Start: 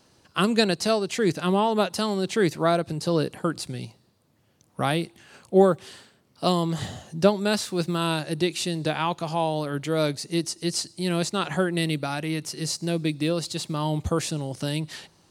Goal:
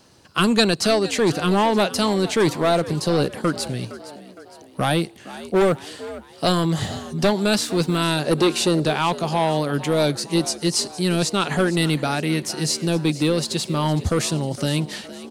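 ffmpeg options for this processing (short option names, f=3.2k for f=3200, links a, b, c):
-filter_complex "[0:a]asettb=1/sr,asplit=3[a][b][c];[a]atrim=end=8.264[d];[b]atrim=start=8.26:end=8.85,asetpts=PTS-STARTPTS,afade=t=in:d=0.004:c=qsin,afade=t=out:st=0.586:d=0.004:c=qsin,equalizer=f=500:w=0.99:g=11[e];[c]atrim=start=8.846[f];[d][e]acrossfade=d=0.004:c1=hsin:c2=qsin[g];[g][f]acrossfade=d=0.004:c1=qsin:c2=hsin,acrossover=split=2200[h][i];[h]asoftclip=type=hard:threshold=-20dB[j];[j][i]amix=inputs=2:normalize=0,asplit=5[k][l][m][n][o];[l]adelay=462,afreqshift=69,volume=-16dB[p];[m]adelay=924,afreqshift=138,volume=-22.2dB[q];[n]adelay=1386,afreqshift=207,volume=-28.4dB[r];[o]adelay=1848,afreqshift=276,volume=-34.6dB[s];[k][p][q][r][s]amix=inputs=5:normalize=0,volume=6dB"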